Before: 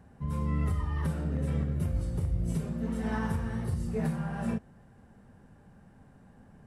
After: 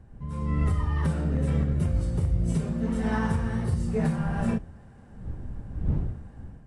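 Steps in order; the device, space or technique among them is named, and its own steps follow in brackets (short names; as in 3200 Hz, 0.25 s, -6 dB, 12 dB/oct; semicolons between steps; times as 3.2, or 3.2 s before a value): smartphone video outdoors (wind noise 91 Hz -41 dBFS; AGC gain up to 8 dB; gain -3 dB; AAC 96 kbps 22050 Hz)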